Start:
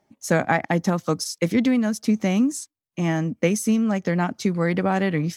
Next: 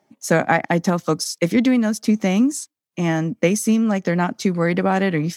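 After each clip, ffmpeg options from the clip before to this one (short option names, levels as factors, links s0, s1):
-af "highpass=140,volume=1.5"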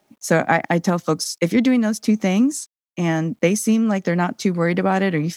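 -af "acrusher=bits=10:mix=0:aa=0.000001"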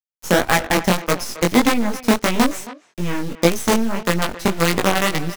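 -filter_complex "[0:a]acrusher=bits=3:dc=4:mix=0:aa=0.000001,flanger=delay=17:depth=5.5:speed=1.7,asplit=2[s0][s1];[s1]adelay=270,highpass=300,lowpass=3400,asoftclip=type=hard:threshold=0.224,volume=0.178[s2];[s0][s2]amix=inputs=2:normalize=0,volume=1.5"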